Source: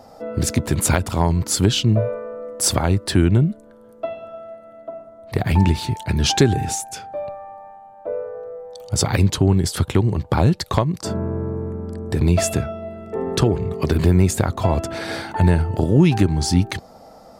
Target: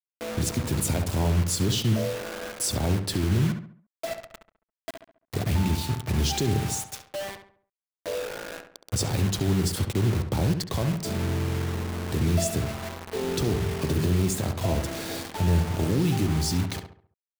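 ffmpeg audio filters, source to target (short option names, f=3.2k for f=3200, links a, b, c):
-filter_complex "[0:a]acrossover=split=120|810|2500[a][b][c][d];[c]acompressor=threshold=-46dB:ratio=6[e];[a][b][e][d]amix=inputs=4:normalize=0,alimiter=limit=-12dB:level=0:latency=1:release=26,acrusher=bits=4:mix=0:aa=0.000001,asplit=2[f][g];[g]adelay=69,lowpass=f=2.3k:p=1,volume=-7dB,asplit=2[h][i];[i]adelay=69,lowpass=f=2.3k:p=1,volume=0.41,asplit=2[j][k];[k]adelay=69,lowpass=f=2.3k:p=1,volume=0.41,asplit=2[l][m];[m]adelay=69,lowpass=f=2.3k:p=1,volume=0.41,asplit=2[n][o];[o]adelay=69,lowpass=f=2.3k:p=1,volume=0.41[p];[f][h][j][l][n][p]amix=inputs=6:normalize=0,volume=-5dB"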